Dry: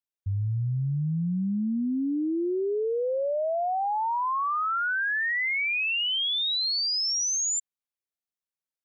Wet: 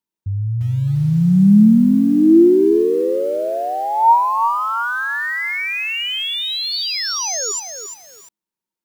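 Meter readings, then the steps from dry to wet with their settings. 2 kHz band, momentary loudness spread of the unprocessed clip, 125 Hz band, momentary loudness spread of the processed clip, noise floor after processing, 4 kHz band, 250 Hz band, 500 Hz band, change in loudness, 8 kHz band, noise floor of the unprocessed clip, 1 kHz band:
+5.0 dB, 5 LU, +11.0 dB, 11 LU, below −85 dBFS, +4.5 dB, +16.5 dB, +11.0 dB, +10.0 dB, can't be measured, below −85 dBFS, +11.0 dB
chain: hollow resonant body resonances 210/330/920 Hz, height 15 dB, ringing for 50 ms
sound drawn into the spectrogram fall, 0:06.72–0:07.52, 390–4,800 Hz −34 dBFS
feedback echo at a low word length 346 ms, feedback 35%, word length 7 bits, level −7.5 dB
level +3.5 dB

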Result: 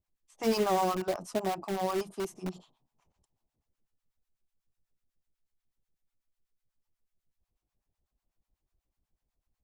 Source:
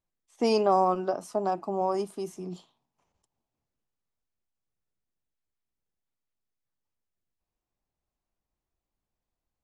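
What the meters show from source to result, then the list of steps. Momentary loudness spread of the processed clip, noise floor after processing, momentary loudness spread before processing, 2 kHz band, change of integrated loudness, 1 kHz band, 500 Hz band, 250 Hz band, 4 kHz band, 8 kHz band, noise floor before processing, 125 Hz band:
10 LU, below −85 dBFS, 16 LU, +3.0 dB, −4.0 dB, −5.0 dB, −4.5 dB, −2.0 dB, 0.0 dB, +4.0 dB, below −85 dBFS, −0.5 dB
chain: low-shelf EQ 140 Hz +9 dB
two-band tremolo in antiphase 8.1 Hz, depth 100%, crossover 730 Hz
in parallel at −6 dB: wrap-around overflow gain 30 dB

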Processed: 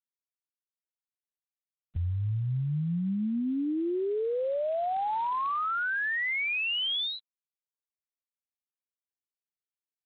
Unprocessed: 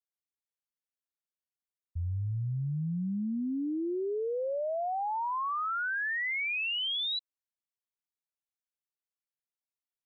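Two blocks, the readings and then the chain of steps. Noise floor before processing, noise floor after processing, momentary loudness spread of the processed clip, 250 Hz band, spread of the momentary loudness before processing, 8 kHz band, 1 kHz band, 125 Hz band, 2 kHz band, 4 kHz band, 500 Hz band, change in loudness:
below −85 dBFS, below −85 dBFS, 5 LU, +3.0 dB, 5 LU, can't be measured, +2.5 dB, +3.0 dB, +2.5 dB, +1.5 dB, +3.0 dB, +2.5 dB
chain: ceiling on every frequency bin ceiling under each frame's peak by 18 dB
level +4 dB
G.726 24 kbit/s 8,000 Hz

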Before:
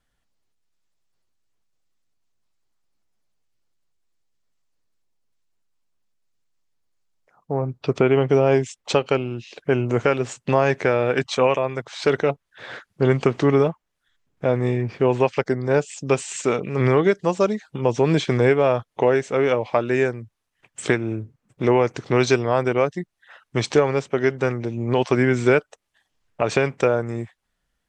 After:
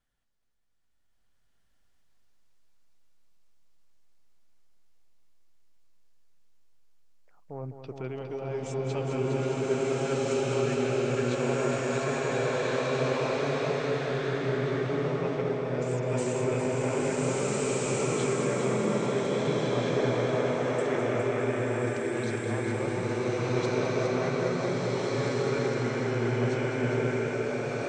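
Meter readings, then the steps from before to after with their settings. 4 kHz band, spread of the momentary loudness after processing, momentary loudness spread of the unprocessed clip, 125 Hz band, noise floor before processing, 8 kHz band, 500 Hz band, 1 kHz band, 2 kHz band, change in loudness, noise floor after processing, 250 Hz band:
−5.5 dB, 3 LU, 8 LU, −6.0 dB, −77 dBFS, −2.0 dB, −7.5 dB, −7.5 dB, −7.0 dB, −7.5 dB, −65 dBFS, −6.5 dB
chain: reversed playback
downward compressor, threshold −27 dBFS, peak gain reduction 15 dB
reversed playback
echo machine with several playback heads 205 ms, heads first and second, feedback 59%, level −9 dB
slow-attack reverb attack 1,670 ms, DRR −9.5 dB
level −7.5 dB

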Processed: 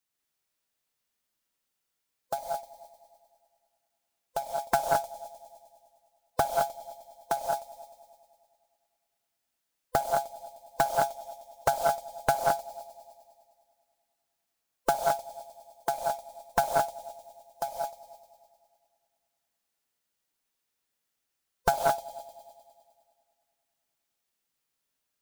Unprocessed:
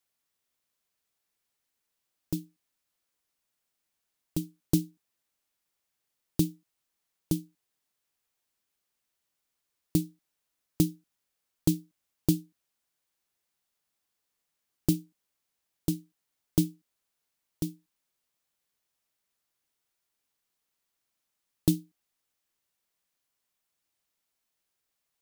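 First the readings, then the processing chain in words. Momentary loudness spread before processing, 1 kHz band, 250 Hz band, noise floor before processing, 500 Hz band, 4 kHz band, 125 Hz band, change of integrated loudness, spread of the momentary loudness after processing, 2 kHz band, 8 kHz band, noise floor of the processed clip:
8 LU, +32.0 dB, −17.0 dB, −83 dBFS, +13.0 dB, +2.5 dB, −13.5 dB, +1.5 dB, 19 LU, can't be measured, +1.5 dB, −82 dBFS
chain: neighbouring bands swapped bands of 500 Hz
in parallel at −10.5 dB: centre clipping without the shift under −34.5 dBFS
on the sum: dynamic equaliser 1,000 Hz, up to −3 dB, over −42 dBFS, Q 6.5
on a send: echo machine with several playback heads 102 ms, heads all three, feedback 49%, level −21 dB
on the sum: reverb whose tail is shaped and stops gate 240 ms rising, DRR −0.5 dB
highs frequency-modulated by the lows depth 0.73 ms
level −3 dB

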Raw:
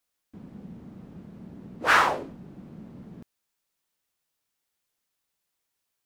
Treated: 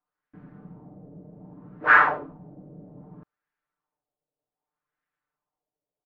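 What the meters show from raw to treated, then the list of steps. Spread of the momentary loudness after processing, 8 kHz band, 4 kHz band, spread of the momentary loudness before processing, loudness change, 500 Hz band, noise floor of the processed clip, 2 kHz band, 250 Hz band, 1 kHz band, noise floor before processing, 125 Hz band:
15 LU, below −25 dB, −11.5 dB, 12 LU, +3.5 dB, −1.5 dB, below −85 dBFS, +5.5 dB, −2.5 dB, +2.0 dB, −81 dBFS, −0.5 dB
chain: comb filter 6.7 ms, depth 83%
auto-filter low-pass sine 0.64 Hz 570–1,700 Hz
level −4.5 dB

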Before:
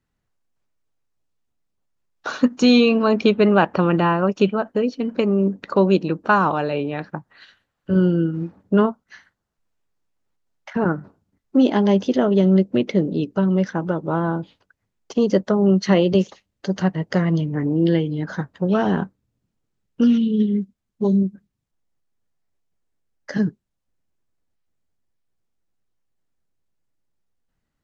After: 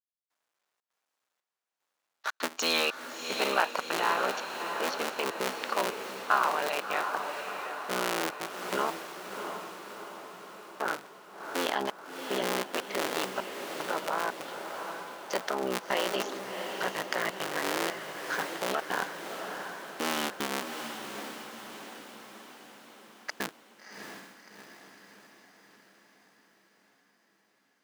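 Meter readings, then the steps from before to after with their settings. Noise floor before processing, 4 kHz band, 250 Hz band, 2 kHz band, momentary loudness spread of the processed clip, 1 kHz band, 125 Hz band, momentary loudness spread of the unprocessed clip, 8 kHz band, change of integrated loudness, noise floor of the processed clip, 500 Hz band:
−78 dBFS, −1.5 dB, −22.5 dB, −2.5 dB, 17 LU, −5.0 dB, −28.5 dB, 11 LU, can't be measured, −12.5 dB, −84 dBFS, −13.0 dB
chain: sub-harmonics by changed cycles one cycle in 3, muted
high-pass filter 850 Hz 12 dB per octave
in parallel at 0 dB: compressor whose output falls as the input rises −35 dBFS, ratio −1
on the sum: gate pattern "...xxxxx.xxxxx." 150 BPM −60 dB
on a send: feedback delay with all-pass diffusion 680 ms, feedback 57%, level −6.5 dB
on the sum: level −4.5 dB

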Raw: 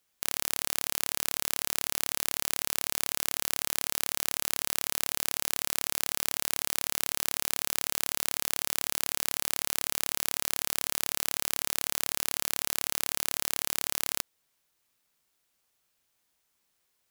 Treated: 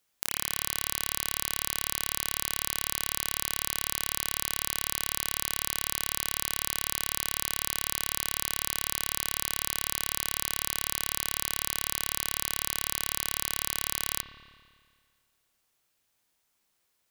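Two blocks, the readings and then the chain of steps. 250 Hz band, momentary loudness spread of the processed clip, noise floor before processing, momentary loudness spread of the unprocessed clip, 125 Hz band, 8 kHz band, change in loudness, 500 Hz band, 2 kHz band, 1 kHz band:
−0.5 dB, 0 LU, −76 dBFS, 0 LU, +3.0 dB, 0.0 dB, 0.0 dB, −1.5 dB, +0.5 dB, +0.5 dB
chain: spring reverb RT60 1.9 s, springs 56 ms, chirp 40 ms, DRR 8 dB

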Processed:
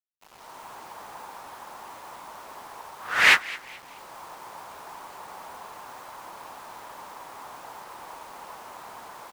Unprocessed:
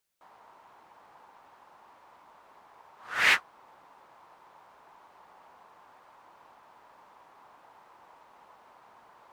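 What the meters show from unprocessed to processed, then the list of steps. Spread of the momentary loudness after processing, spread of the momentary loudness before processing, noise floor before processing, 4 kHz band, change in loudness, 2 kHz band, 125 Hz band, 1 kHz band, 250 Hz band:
19 LU, 9 LU, −59 dBFS, +6.0 dB, +5.0 dB, +6.0 dB, can't be measured, +8.0 dB, +8.0 dB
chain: automatic gain control gain up to 14.5 dB
bit-depth reduction 8 bits, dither none
echo with shifted repeats 214 ms, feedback 34%, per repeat +110 Hz, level −19.5 dB
level −1 dB

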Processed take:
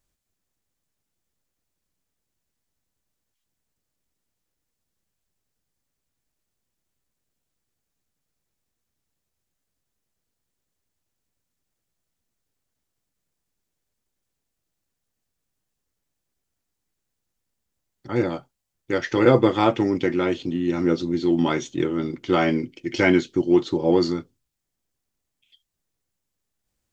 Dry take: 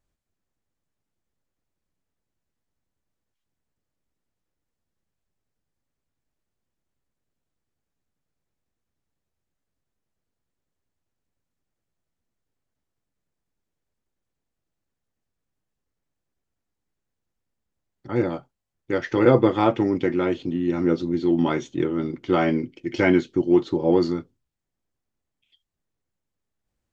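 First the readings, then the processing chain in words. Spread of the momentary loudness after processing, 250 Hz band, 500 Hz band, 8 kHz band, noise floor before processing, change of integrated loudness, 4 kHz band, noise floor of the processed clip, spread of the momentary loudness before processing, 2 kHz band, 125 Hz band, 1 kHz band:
10 LU, 0.0 dB, 0.0 dB, can't be measured, −83 dBFS, +0.5 dB, +5.5 dB, −81 dBFS, 10 LU, +2.5 dB, 0.0 dB, +1.0 dB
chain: high-shelf EQ 3,100 Hz +9.5 dB

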